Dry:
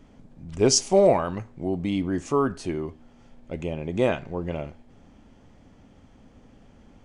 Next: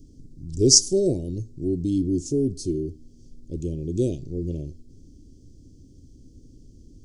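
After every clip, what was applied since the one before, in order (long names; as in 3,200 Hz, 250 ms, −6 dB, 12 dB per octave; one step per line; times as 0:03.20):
Chebyshev band-stop filter 340–5,000 Hz, order 3
parametric band 210 Hz −10.5 dB 0.56 octaves
level +7 dB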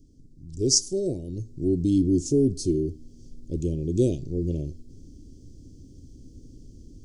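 automatic gain control gain up to 9 dB
level −6.5 dB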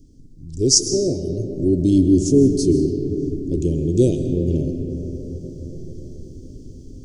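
convolution reverb RT60 5.0 s, pre-delay 95 ms, DRR 6 dB
level +6 dB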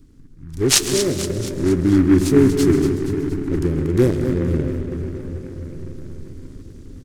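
on a send: repeating echo 236 ms, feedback 55%, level −9.5 dB
on the sum: short delay modulated by noise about 1,300 Hz, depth 0.041 ms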